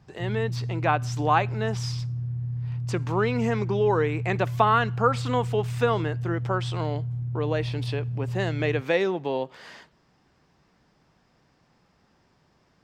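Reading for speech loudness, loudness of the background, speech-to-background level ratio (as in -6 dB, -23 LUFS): -27.0 LUFS, -31.5 LUFS, 4.5 dB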